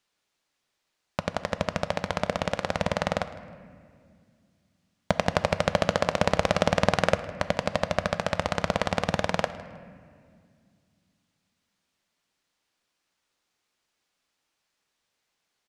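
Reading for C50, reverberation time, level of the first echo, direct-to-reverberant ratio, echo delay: 12.0 dB, 2.1 s, −19.0 dB, 11.0 dB, 157 ms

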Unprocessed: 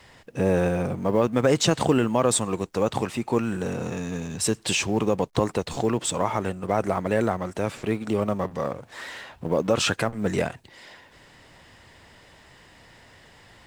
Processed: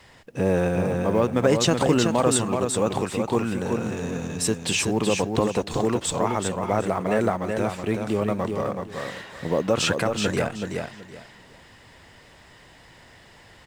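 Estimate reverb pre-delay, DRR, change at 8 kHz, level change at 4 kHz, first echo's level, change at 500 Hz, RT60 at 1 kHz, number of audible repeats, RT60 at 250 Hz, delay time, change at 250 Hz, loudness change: no reverb audible, no reverb audible, +1.5 dB, +1.5 dB, −5.0 dB, +1.0 dB, no reverb audible, 3, no reverb audible, 376 ms, +1.5 dB, +1.0 dB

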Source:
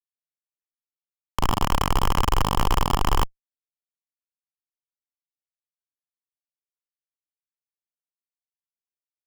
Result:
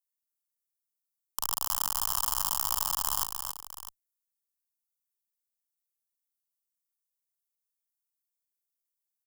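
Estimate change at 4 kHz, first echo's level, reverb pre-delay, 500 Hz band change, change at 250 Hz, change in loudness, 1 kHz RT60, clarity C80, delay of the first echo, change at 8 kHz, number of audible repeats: −5.0 dB, −6.0 dB, no reverb audible, −21.0 dB, −25.5 dB, −4.0 dB, no reverb audible, no reverb audible, 276 ms, +6.0 dB, 2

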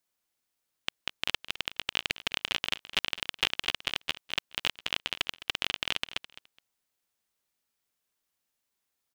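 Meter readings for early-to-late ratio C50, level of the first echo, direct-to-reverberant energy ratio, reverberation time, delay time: no reverb audible, −15.5 dB, no reverb audible, no reverb audible, 210 ms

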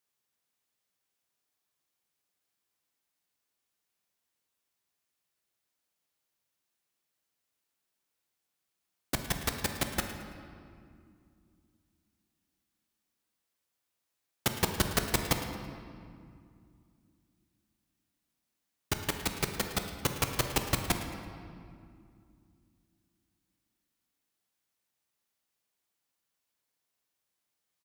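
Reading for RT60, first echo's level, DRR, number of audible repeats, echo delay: 2.3 s, −15.5 dB, 4.5 dB, 1, 110 ms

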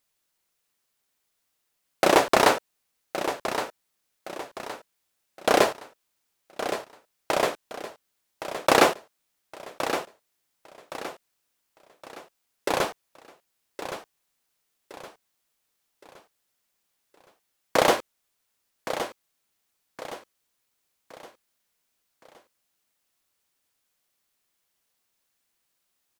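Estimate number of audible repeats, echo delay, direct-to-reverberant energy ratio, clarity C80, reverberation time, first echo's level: 4, 1,117 ms, no reverb audible, no reverb audible, no reverb audible, −10.0 dB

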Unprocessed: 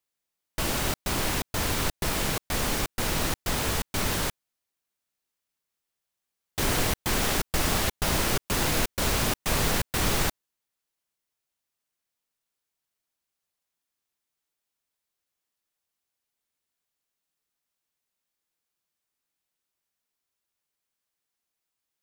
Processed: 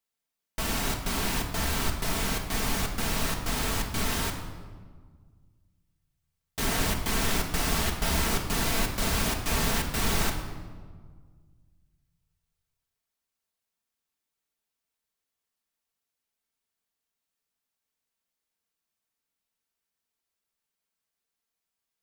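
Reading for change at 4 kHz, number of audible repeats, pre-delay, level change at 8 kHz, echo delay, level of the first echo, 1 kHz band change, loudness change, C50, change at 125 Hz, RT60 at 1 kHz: −1.5 dB, no echo audible, 4 ms, −2.0 dB, no echo audible, no echo audible, −1.5 dB, −1.5 dB, 6.5 dB, −1.0 dB, 1.6 s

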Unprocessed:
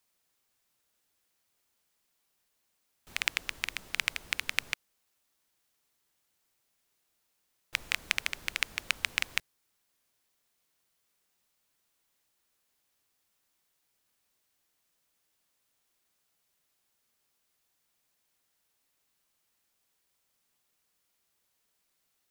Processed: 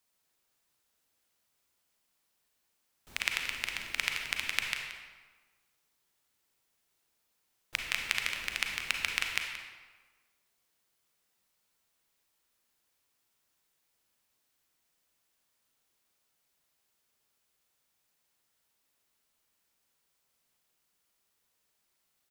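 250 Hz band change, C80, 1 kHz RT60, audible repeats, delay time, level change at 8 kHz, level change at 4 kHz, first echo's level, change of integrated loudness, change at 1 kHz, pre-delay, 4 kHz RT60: 0.0 dB, 5.0 dB, 1.4 s, 1, 177 ms, −0.5 dB, 0.0 dB, −13.0 dB, −0.5 dB, +0.5 dB, 34 ms, 0.95 s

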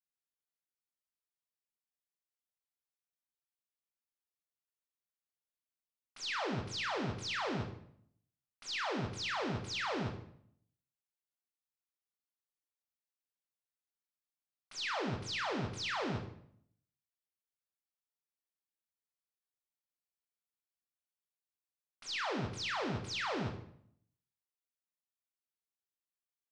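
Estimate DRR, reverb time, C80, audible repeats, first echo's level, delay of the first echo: 3.0 dB, 0.65 s, 10.5 dB, no echo audible, no echo audible, no echo audible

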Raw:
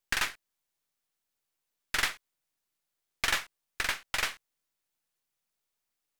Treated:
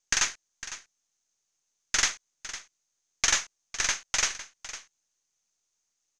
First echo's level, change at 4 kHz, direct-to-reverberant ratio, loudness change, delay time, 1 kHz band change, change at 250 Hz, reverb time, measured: −14.0 dB, +4.5 dB, no reverb audible, +4.5 dB, 505 ms, +0.5 dB, 0.0 dB, no reverb audible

